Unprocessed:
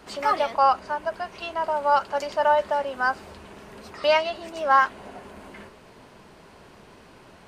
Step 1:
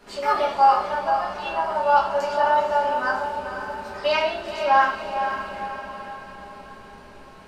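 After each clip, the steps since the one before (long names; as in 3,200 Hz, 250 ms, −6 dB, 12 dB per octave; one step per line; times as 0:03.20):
on a send: feedback delay with all-pass diffusion 483 ms, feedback 51%, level −7.5 dB
on the sum: rectangular room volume 75 cubic metres, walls mixed, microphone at 1.3 metres
level −5.5 dB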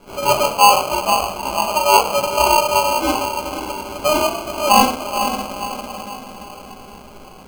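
decimation without filtering 24×
level +5 dB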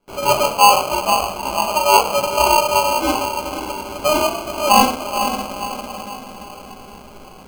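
noise gate with hold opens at −35 dBFS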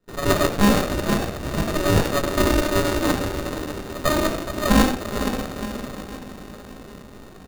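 far-end echo of a speakerphone 90 ms, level −12 dB
windowed peak hold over 33 samples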